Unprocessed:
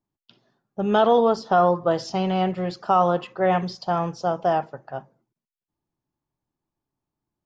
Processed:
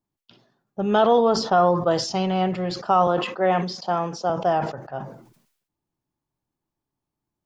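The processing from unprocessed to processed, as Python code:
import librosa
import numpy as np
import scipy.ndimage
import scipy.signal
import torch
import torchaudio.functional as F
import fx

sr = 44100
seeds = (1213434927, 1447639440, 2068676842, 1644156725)

y = fx.high_shelf(x, sr, hz=5100.0, db=9.0, at=(1.77, 2.26))
y = fx.highpass(y, sr, hz=180.0, slope=24, at=(3.07, 4.3))
y = fx.sustainer(y, sr, db_per_s=81.0)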